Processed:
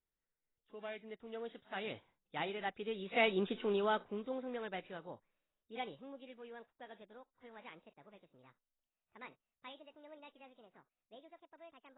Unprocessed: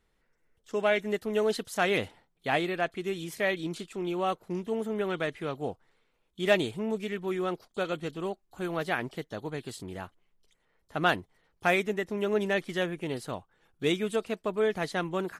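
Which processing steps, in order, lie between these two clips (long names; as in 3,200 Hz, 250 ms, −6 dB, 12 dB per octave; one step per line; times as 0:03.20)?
gliding playback speed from 95% → 162%
source passing by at 0:03.51, 11 m/s, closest 2.7 metres
level +1 dB
AAC 16 kbit/s 16,000 Hz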